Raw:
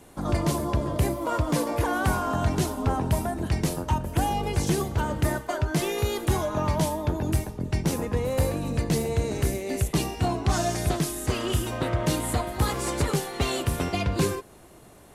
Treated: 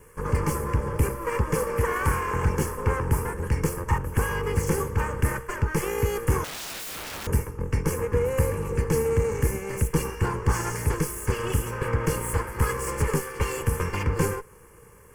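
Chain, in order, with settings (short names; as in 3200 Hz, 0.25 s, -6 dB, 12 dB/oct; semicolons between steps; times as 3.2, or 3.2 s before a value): minimum comb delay 1.8 ms; bell 610 Hz +2 dB; fixed phaser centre 1600 Hz, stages 4; small resonant body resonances 470/860 Hz, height 11 dB, ringing for 35 ms; 6.44–7.27 wrapped overs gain 33.5 dB; gain +2.5 dB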